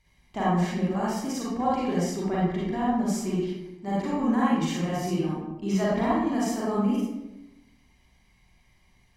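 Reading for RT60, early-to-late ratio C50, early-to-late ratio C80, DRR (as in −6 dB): 0.95 s, −3.0 dB, 2.0 dB, −7.5 dB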